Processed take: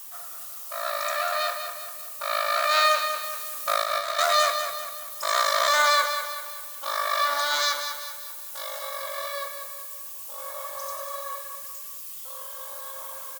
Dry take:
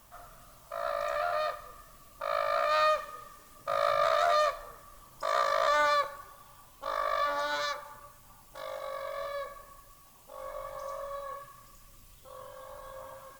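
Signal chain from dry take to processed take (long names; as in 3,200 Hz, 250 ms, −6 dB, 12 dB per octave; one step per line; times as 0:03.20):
spectral tilt +4.5 dB per octave
0:03.23–0:04.19: compressor whose output falls as the input rises −30 dBFS, ratio −0.5
on a send: repeating echo 195 ms, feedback 46%, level −8 dB
on the sum: level +3.5 dB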